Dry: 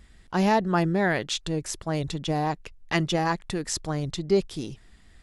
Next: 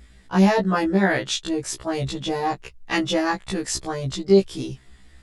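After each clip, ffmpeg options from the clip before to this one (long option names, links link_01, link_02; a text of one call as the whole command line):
ffmpeg -i in.wav -af "afftfilt=real='re*1.73*eq(mod(b,3),0)':imag='im*1.73*eq(mod(b,3),0)':win_size=2048:overlap=0.75,volume=6dB" out.wav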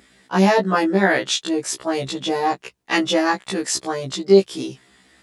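ffmpeg -i in.wav -af "highpass=230,volume=4dB" out.wav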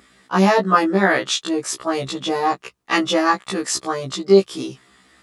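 ffmpeg -i in.wav -af "equalizer=frequency=1200:width_type=o:width=0.28:gain=9" out.wav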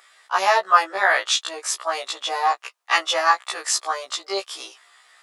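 ffmpeg -i in.wav -af "highpass=frequency=660:width=0.5412,highpass=frequency=660:width=1.3066,volume=1dB" out.wav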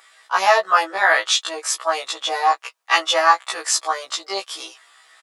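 ffmpeg -i in.wav -af "aecho=1:1:6.2:0.47,volume=1.5dB" out.wav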